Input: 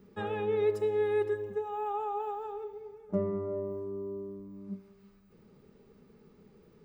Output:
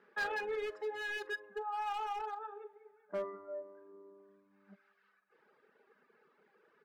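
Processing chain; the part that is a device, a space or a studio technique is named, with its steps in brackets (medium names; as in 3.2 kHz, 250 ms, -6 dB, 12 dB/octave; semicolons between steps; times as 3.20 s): megaphone (band-pass 700–2600 Hz; peaking EQ 1.6 kHz +11.5 dB 0.33 oct; hard clipper -34 dBFS, distortion -13 dB; doubling 44 ms -13 dB); reverb removal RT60 1.9 s; trim +2.5 dB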